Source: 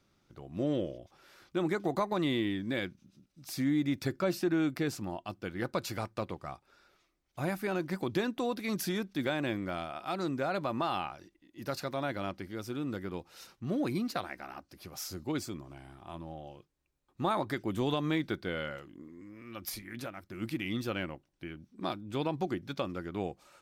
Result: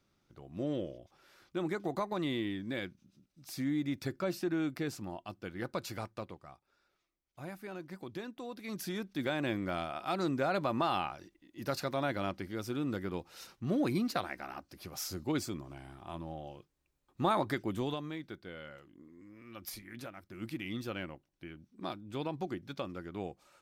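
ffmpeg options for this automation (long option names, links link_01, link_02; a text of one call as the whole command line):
ffmpeg -i in.wav -af "volume=14.5dB,afade=type=out:start_time=6.04:duration=0.42:silence=0.446684,afade=type=in:start_time=8.47:duration=1.32:silence=0.251189,afade=type=out:start_time=17.48:duration=0.62:silence=0.251189,afade=type=in:start_time=18.61:duration=0.73:silence=0.473151" out.wav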